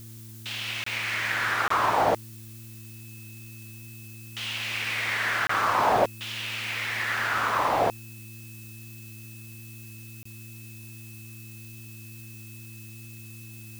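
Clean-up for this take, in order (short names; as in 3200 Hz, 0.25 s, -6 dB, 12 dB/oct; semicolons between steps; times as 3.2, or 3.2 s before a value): de-hum 112.2 Hz, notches 3; notch 2600 Hz, Q 30; interpolate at 0.84/1.68/5.47/10.23, 24 ms; denoiser 30 dB, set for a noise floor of -43 dBFS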